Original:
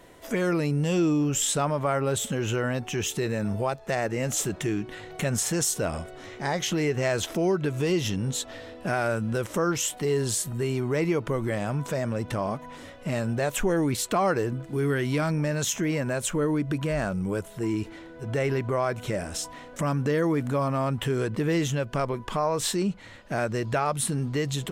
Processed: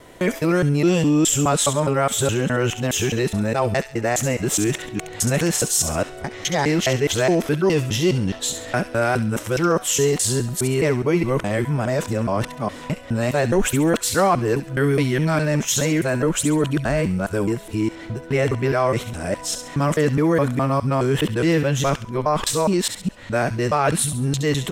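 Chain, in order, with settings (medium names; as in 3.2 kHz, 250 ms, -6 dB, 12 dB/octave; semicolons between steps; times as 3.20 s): time reversed locally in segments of 208 ms; feedback echo behind a high-pass 68 ms, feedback 37%, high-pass 2.2 kHz, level -8 dB; trim +6.5 dB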